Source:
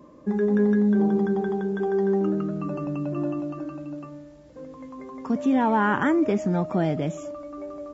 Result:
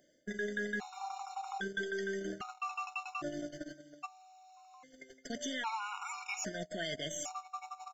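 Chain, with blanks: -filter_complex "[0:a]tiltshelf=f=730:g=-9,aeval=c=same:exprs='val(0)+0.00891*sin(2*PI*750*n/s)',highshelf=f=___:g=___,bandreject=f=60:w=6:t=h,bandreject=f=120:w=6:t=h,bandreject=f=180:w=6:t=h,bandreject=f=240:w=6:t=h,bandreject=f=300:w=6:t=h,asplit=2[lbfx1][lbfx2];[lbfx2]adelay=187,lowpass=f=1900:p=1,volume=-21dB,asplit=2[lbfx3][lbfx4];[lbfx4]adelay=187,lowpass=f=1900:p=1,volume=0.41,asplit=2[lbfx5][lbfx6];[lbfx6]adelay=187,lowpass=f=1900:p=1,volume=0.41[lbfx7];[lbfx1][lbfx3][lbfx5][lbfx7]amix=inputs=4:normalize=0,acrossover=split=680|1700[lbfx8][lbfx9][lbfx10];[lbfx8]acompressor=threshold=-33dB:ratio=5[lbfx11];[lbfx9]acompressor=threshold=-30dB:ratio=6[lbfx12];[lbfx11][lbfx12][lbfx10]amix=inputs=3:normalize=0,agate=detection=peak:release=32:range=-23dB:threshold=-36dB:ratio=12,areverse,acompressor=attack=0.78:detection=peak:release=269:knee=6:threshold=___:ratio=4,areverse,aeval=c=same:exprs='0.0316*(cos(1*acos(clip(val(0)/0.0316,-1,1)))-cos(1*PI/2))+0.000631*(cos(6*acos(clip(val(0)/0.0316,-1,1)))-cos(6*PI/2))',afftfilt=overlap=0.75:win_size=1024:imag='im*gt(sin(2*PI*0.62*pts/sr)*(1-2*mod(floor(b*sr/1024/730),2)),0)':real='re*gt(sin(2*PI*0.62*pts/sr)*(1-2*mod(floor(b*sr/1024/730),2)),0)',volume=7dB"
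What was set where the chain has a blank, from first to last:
2200, 12, -40dB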